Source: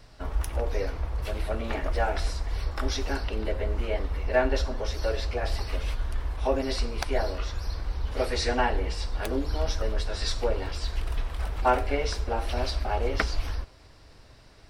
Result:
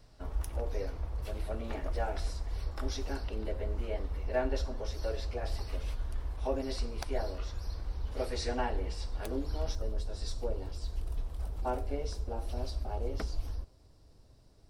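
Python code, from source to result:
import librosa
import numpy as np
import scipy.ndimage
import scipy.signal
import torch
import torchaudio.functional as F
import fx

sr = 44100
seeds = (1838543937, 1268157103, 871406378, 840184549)

y = fx.peak_eq(x, sr, hz=2000.0, db=fx.steps((0.0, -6.0), (9.75, -15.0)), octaves=2.3)
y = y * librosa.db_to_amplitude(-6.0)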